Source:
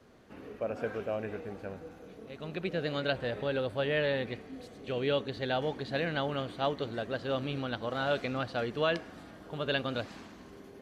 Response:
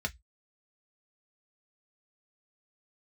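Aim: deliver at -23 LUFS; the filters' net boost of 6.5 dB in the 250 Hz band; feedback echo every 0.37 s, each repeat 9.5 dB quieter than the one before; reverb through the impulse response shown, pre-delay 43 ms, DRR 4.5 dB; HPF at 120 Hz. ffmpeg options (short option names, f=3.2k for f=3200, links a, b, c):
-filter_complex "[0:a]highpass=120,equalizer=f=250:t=o:g=8,aecho=1:1:370|740|1110|1480:0.335|0.111|0.0365|0.012,asplit=2[a][b];[1:a]atrim=start_sample=2205,adelay=43[c];[b][c]afir=irnorm=-1:irlink=0,volume=-8.5dB[d];[a][d]amix=inputs=2:normalize=0,volume=7dB"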